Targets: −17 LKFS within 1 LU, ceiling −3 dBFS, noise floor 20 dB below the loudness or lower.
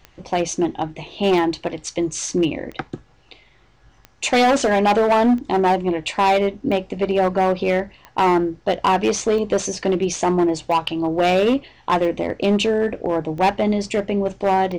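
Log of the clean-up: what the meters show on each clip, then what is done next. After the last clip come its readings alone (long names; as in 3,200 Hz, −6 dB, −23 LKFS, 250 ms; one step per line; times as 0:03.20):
number of clicks 12; integrated loudness −20.0 LKFS; sample peak −11.5 dBFS; target loudness −17.0 LKFS
→ click removal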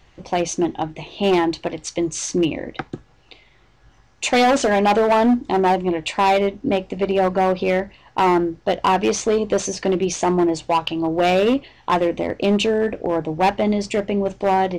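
number of clicks 0; integrated loudness −20.0 LKFS; sample peak −9.5 dBFS; target loudness −17.0 LKFS
→ level +3 dB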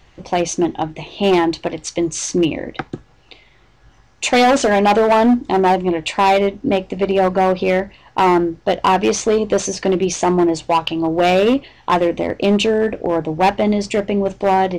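integrated loudness −17.0 LKFS; sample peak −6.5 dBFS; background noise floor −51 dBFS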